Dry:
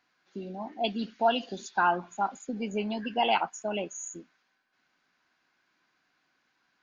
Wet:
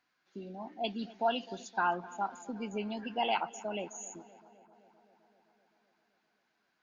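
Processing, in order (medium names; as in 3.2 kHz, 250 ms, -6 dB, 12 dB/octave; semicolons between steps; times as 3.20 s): filtered feedback delay 259 ms, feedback 71%, low-pass 2.9 kHz, level -19.5 dB; trim -5.5 dB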